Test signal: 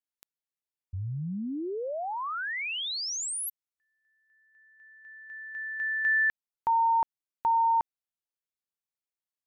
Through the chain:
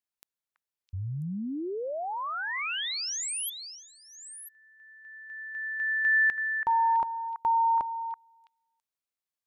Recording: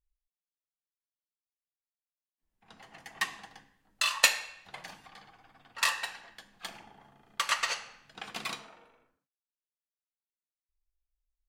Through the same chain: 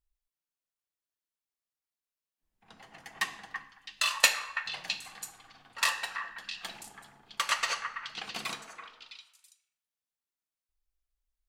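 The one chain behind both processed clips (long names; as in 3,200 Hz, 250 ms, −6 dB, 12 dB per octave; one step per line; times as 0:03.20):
echo through a band-pass that steps 330 ms, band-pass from 1,400 Hz, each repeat 1.4 octaves, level −5 dB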